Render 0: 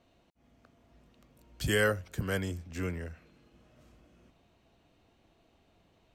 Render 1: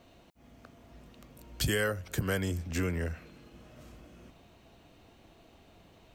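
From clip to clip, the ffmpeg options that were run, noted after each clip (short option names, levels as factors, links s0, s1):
-af "highshelf=f=12000:g=6.5,acompressor=threshold=0.0158:ratio=5,volume=2.66"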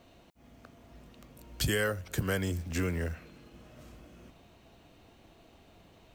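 -af "acrusher=bits=7:mode=log:mix=0:aa=0.000001"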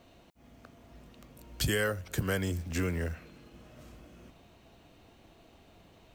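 -af anull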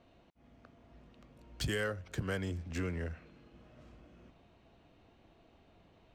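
-af "adynamicsmooth=sensitivity=7.5:basefreq=4600,volume=0.562"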